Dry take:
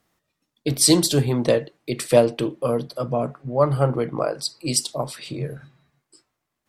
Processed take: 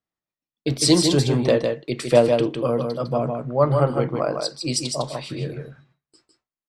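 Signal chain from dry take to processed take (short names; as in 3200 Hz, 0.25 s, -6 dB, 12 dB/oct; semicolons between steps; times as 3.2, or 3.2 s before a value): gate with hold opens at -41 dBFS; LPF 6500 Hz 12 dB/oct; echo 0.155 s -5 dB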